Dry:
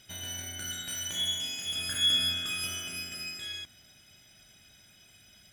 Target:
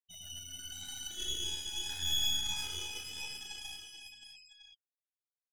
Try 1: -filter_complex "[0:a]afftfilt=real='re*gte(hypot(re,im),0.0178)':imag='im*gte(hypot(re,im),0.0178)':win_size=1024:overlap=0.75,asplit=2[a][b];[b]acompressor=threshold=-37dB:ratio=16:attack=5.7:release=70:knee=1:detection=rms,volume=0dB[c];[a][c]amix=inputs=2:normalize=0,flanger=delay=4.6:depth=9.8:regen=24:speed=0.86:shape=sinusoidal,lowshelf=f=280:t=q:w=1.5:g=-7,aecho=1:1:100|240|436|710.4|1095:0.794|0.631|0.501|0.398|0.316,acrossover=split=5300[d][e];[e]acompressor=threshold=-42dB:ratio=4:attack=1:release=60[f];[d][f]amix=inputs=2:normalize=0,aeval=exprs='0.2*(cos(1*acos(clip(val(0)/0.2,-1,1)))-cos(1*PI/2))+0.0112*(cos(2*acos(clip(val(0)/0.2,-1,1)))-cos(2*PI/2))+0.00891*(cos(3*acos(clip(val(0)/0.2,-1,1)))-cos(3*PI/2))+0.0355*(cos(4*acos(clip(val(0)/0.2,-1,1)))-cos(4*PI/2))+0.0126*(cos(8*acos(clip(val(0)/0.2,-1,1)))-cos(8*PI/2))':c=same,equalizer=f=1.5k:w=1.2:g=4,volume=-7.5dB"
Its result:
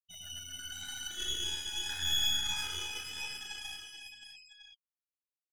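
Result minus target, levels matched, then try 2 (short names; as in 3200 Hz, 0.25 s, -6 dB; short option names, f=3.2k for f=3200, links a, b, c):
2000 Hz band +3.5 dB
-filter_complex "[0:a]afftfilt=real='re*gte(hypot(re,im),0.0178)':imag='im*gte(hypot(re,im),0.0178)':win_size=1024:overlap=0.75,asplit=2[a][b];[b]acompressor=threshold=-37dB:ratio=16:attack=5.7:release=70:knee=1:detection=rms,volume=0dB[c];[a][c]amix=inputs=2:normalize=0,flanger=delay=4.6:depth=9.8:regen=24:speed=0.86:shape=sinusoidal,lowshelf=f=280:t=q:w=1.5:g=-7,aecho=1:1:100|240|436|710.4|1095:0.794|0.631|0.501|0.398|0.316,acrossover=split=5300[d][e];[e]acompressor=threshold=-42dB:ratio=4:attack=1:release=60[f];[d][f]amix=inputs=2:normalize=0,aeval=exprs='0.2*(cos(1*acos(clip(val(0)/0.2,-1,1)))-cos(1*PI/2))+0.0112*(cos(2*acos(clip(val(0)/0.2,-1,1)))-cos(2*PI/2))+0.00891*(cos(3*acos(clip(val(0)/0.2,-1,1)))-cos(3*PI/2))+0.0355*(cos(4*acos(clip(val(0)/0.2,-1,1)))-cos(4*PI/2))+0.0126*(cos(8*acos(clip(val(0)/0.2,-1,1)))-cos(8*PI/2))':c=same,equalizer=f=1.5k:w=1.2:g=-5.5,volume=-7.5dB"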